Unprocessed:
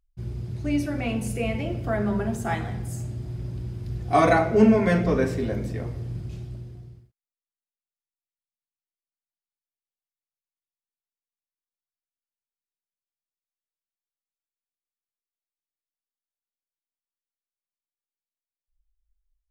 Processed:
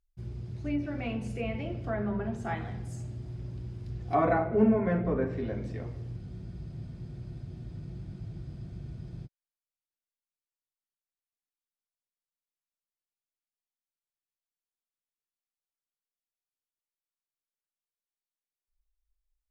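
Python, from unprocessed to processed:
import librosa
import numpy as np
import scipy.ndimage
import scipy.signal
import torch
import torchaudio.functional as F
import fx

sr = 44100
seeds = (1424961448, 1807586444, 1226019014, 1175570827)

y = fx.env_lowpass_down(x, sr, base_hz=1500.0, full_db=-18.5)
y = fx.spec_freeze(y, sr, seeds[0], at_s=6.21, hold_s=3.04)
y = y * 10.0 ** (-6.5 / 20.0)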